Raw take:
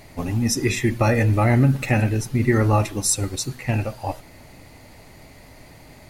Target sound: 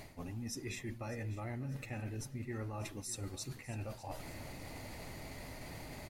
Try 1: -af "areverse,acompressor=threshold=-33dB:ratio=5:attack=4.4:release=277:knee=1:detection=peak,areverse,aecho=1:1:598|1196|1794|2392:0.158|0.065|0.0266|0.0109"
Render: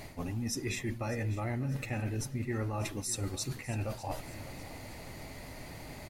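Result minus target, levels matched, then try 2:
downward compressor: peak gain reduction −7 dB
-af "areverse,acompressor=threshold=-42dB:ratio=5:attack=4.4:release=277:knee=1:detection=peak,areverse,aecho=1:1:598|1196|1794|2392:0.158|0.065|0.0266|0.0109"

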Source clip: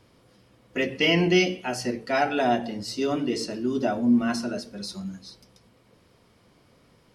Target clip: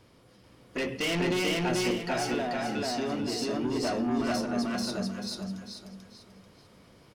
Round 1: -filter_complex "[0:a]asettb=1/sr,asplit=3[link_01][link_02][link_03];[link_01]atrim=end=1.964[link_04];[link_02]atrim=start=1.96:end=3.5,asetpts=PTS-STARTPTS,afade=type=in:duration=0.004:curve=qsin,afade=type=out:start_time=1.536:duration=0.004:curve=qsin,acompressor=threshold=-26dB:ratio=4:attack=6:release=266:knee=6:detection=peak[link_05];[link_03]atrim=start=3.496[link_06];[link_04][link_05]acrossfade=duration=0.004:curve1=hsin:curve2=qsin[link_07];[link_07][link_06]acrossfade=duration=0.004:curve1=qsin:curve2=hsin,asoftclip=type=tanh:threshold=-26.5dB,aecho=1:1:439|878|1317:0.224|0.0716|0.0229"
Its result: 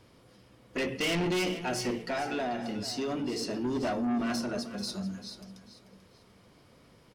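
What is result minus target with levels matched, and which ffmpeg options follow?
echo-to-direct −12 dB
-filter_complex "[0:a]asettb=1/sr,asplit=3[link_01][link_02][link_03];[link_01]atrim=end=1.964[link_04];[link_02]atrim=start=1.96:end=3.5,asetpts=PTS-STARTPTS,afade=type=in:duration=0.004:curve=qsin,afade=type=out:start_time=1.536:duration=0.004:curve=qsin,acompressor=threshold=-26dB:ratio=4:attack=6:release=266:knee=6:detection=peak[link_05];[link_03]atrim=start=3.496[link_06];[link_04][link_05]acrossfade=duration=0.004:curve1=hsin:curve2=qsin[link_07];[link_07][link_06]acrossfade=duration=0.004:curve1=qsin:curve2=hsin,asoftclip=type=tanh:threshold=-26.5dB,aecho=1:1:439|878|1317|1756:0.891|0.285|0.0913|0.0292"

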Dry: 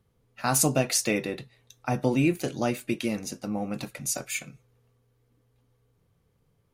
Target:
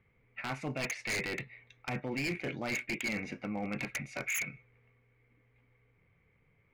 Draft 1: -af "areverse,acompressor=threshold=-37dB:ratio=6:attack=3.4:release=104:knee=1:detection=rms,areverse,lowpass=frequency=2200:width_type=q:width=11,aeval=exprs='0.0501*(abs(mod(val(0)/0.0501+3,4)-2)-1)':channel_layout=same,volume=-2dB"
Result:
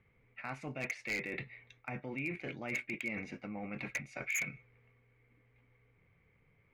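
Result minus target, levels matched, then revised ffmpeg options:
downward compressor: peak gain reduction +6 dB
-af "areverse,acompressor=threshold=-30dB:ratio=6:attack=3.4:release=104:knee=1:detection=rms,areverse,lowpass=frequency=2200:width_type=q:width=11,aeval=exprs='0.0501*(abs(mod(val(0)/0.0501+3,4)-2)-1)':channel_layout=same,volume=-2dB"

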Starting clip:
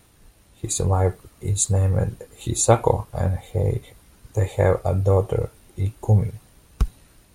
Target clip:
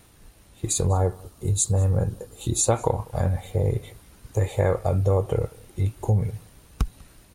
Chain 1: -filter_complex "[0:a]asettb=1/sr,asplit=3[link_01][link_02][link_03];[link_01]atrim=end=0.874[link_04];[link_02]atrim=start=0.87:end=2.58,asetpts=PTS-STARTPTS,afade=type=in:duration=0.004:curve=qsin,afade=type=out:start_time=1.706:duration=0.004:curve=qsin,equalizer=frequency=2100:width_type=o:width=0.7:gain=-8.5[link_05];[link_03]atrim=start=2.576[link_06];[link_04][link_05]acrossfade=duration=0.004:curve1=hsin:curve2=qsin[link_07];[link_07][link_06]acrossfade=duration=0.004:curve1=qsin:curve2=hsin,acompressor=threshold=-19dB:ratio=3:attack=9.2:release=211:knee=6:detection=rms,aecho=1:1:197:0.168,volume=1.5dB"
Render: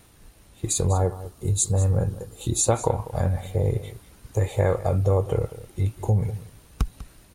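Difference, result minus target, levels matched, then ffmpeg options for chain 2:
echo-to-direct +9 dB
-filter_complex "[0:a]asettb=1/sr,asplit=3[link_01][link_02][link_03];[link_01]atrim=end=0.874[link_04];[link_02]atrim=start=0.87:end=2.58,asetpts=PTS-STARTPTS,afade=type=in:duration=0.004:curve=qsin,afade=type=out:start_time=1.706:duration=0.004:curve=qsin,equalizer=frequency=2100:width_type=o:width=0.7:gain=-8.5[link_05];[link_03]atrim=start=2.576[link_06];[link_04][link_05]acrossfade=duration=0.004:curve1=hsin:curve2=qsin[link_07];[link_07][link_06]acrossfade=duration=0.004:curve1=qsin:curve2=hsin,acompressor=threshold=-19dB:ratio=3:attack=9.2:release=211:knee=6:detection=rms,aecho=1:1:197:0.0596,volume=1.5dB"

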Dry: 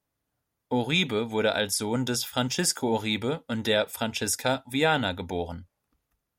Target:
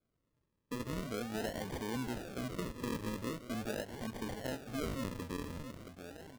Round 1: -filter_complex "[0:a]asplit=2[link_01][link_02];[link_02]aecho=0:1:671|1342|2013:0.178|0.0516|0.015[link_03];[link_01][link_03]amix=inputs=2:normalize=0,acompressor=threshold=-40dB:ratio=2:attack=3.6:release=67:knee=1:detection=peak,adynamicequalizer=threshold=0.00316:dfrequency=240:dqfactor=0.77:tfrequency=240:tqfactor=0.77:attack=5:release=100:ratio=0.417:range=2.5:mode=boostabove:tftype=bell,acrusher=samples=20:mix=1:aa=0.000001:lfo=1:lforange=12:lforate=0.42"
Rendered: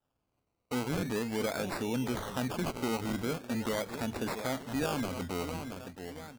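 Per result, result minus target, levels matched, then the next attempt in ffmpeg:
downward compressor: peak gain reduction −6 dB; sample-and-hold swept by an LFO: distortion −8 dB
-filter_complex "[0:a]asplit=2[link_01][link_02];[link_02]aecho=0:1:671|1342|2013:0.178|0.0516|0.015[link_03];[link_01][link_03]amix=inputs=2:normalize=0,acompressor=threshold=-51.5dB:ratio=2:attack=3.6:release=67:knee=1:detection=peak,adynamicequalizer=threshold=0.00316:dfrequency=240:dqfactor=0.77:tfrequency=240:tqfactor=0.77:attack=5:release=100:ratio=0.417:range=2.5:mode=boostabove:tftype=bell,acrusher=samples=20:mix=1:aa=0.000001:lfo=1:lforange=12:lforate=0.42"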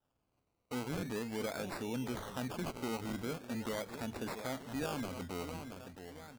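sample-and-hold swept by an LFO: distortion −8 dB
-filter_complex "[0:a]asplit=2[link_01][link_02];[link_02]aecho=0:1:671|1342|2013:0.178|0.0516|0.015[link_03];[link_01][link_03]amix=inputs=2:normalize=0,acompressor=threshold=-51.5dB:ratio=2:attack=3.6:release=67:knee=1:detection=peak,adynamicequalizer=threshold=0.00316:dfrequency=240:dqfactor=0.77:tfrequency=240:tqfactor=0.77:attack=5:release=100:ratio=0.417:range=2.5:mode=boostabove:tftype=bell,acrusher=samples=47:mix=1:aa=0.000001:lfo=1:lforange=28.2:lforate=0.42"

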